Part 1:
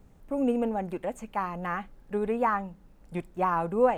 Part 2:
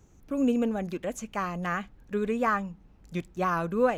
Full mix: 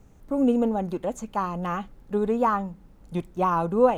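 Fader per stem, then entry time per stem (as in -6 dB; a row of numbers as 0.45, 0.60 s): +2.0, -5.0 dB; 0.00, 0.00 s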